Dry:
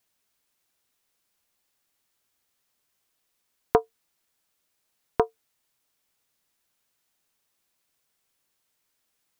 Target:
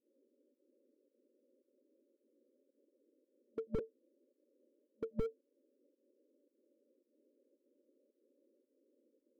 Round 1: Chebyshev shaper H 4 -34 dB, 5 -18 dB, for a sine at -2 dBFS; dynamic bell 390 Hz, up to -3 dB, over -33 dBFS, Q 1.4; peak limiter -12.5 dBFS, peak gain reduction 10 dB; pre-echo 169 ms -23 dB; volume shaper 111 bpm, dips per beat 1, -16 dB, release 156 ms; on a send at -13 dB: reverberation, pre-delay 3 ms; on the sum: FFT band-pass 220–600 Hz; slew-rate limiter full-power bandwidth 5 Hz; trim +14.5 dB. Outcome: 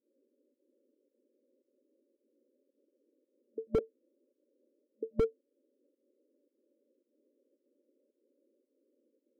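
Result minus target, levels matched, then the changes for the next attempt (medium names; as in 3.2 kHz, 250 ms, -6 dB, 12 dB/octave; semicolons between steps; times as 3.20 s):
slew-rate limiter: distortion -8 dB
change: slew-rate limiter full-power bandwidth 1.5 Hz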